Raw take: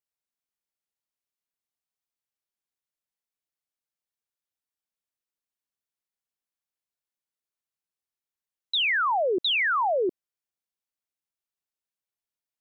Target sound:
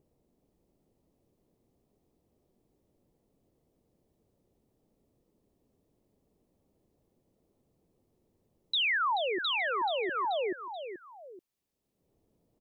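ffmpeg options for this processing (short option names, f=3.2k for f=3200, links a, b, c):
-filter_complex "[0:a]equalizer=f=1.5k:t=o:w=0.21:g=-8,aecho=1:1:432|864|1296:0.473|0.118|0.0296,acrossover=split=490[a][b];[a]acompressor=mode=upward:threshold=-48dB:ratio=2.5[c];[c][b]amix=inputs=2:normalize=0,alimiter=level_in=1dB:limit=-24dB:level=0:latency=1:release=25,volume=-1dB,asplit=2[d][e];[e]acompressor=threshold=-40dB:ratio=6,volume=-2dB[f];[d][f]amix=inputs=2:normalize=0,lowshelf=f=320:g=-3.5,volume=-1.5dB"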